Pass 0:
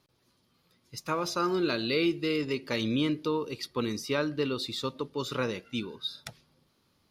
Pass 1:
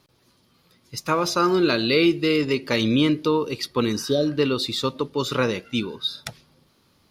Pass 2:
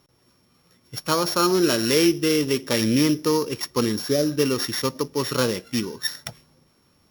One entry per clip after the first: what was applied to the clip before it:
healed spectral selection 0:03.95–0:04.26, 750–3,100 Hz after; level +8.5 dB
samples sorted by size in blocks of 8 samples

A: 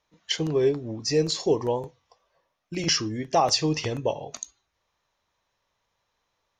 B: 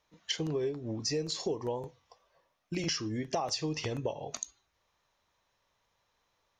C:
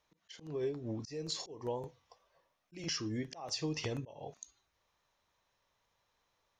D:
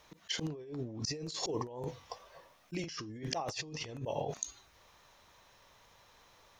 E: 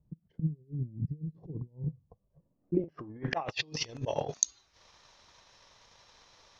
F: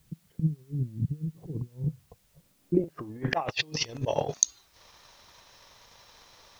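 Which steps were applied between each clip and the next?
downward compressor 5 to 1, threshold −31 dBFS, peak gain reduction 13 dB
volume swells 244 ms; level −2.5 dB
compressor whose output falls as the input rises −49 dBFS, ratio −1; level +8.5 dB
transient designer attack +9 dB, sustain −8 dB; low-pass filter sweep 160 Hz → 5,400 Hz, 0:02.38–0:03.78
background noise white −73 dBFS; level +4.5 dB

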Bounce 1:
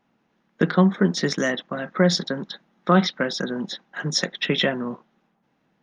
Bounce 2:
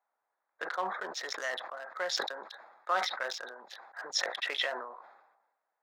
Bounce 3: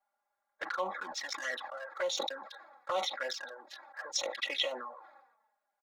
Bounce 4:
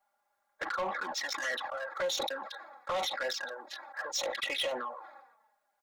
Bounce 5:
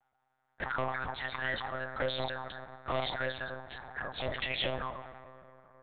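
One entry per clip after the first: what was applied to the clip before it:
adaptive Wiener filter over 15 samples; high-pass filter 660 Hz 24 dB per octave; level that may fall only so fast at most 56 dB per second; level −8 dB
comb filter 3.6 ms, depth 86%; flanger swept by the level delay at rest 5 ms, full sweep at −27.5 dBFS
in parallel at −0.5 dB: brickwall limiter −27.5 dBFS, peak gain reduction 10 dB; on the sum: soft clipping −27 dBFS, distortion −12 dB
dense smooth reverb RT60 4 s, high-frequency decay 0.35×, DRR 12 dB; one-pitch LPC vocoder at 8 kHz 130 Hz

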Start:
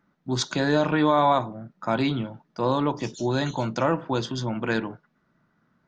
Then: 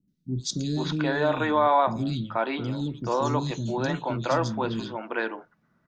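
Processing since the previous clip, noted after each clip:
three-band delay without the direct sound lows, highs, mids 80/480 ms, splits 310/3,600 Hz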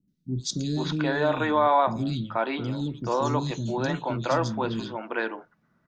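no processing that can be heard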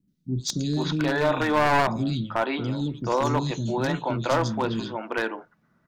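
wavefolder on the positive side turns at −20 dBFS
level +2 dB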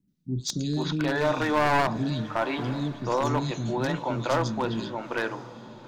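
feedback delay with all-pass diffusion 915 ms, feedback 41%, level −15.5 dB
level −2 dB

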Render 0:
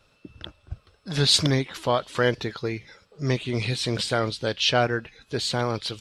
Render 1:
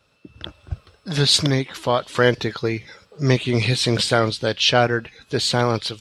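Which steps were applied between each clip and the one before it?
high-pass filter 52 Hz
automatic gain control gain up to 11 dB
level −1 dB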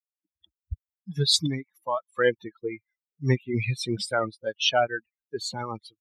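spectral dynamics exaggerated over time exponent 3
level −1.5 dB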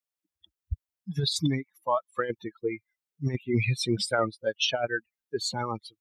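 compressor whose output falls as the input rises −24 dBFS, ratio −0.5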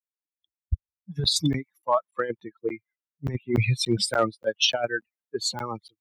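gain into a clipping stage and back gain 15.5 dB
regular buffer underruns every 0.29 s, samples 512, zero, from 0:00.66
multiband upward and downward expander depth 70%
level +1.5 dB

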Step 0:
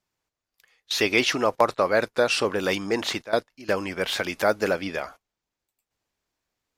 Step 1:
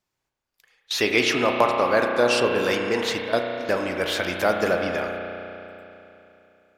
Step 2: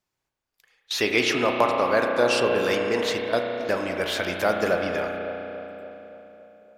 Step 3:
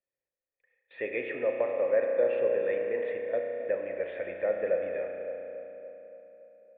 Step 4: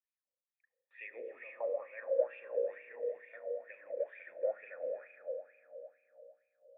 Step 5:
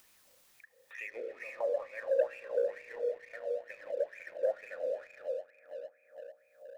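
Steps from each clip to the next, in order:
spring reverb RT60 3.1 s, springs 33 ms, chirp 80 ms, DRR 2.5 dB
delay with a band-pass on its return 283 ms, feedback 59%, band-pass 430 Hz, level −11 dB; level −1.5 dB
formant resonators in series e; level +1.5 dB
LFO wah 2.2 Hz 490–2,500 Hz, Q 6.8
leveller curve on the samples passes 1; upward compression, threshold −38 dBFS

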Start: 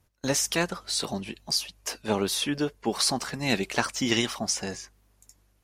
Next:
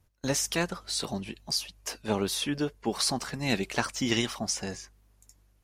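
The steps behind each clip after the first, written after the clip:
low-shelf EQ 130 Hz +6 dB
level −3 dB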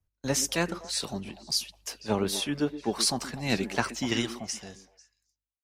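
fade-out on the ending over 1.81 s
echo through a band-pass that steps 124 ms, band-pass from 280 Hz, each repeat 1.4 octaves, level −7 dB
multiband upward and downward expander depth 40%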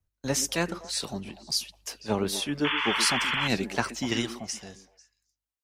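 sound drawn into the spectrogram noise, 0:02.64–0:03.48, 850–3,500 Hz −28 dBFS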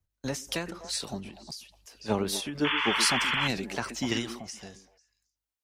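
every ending faded ahead of time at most 110 dB per second

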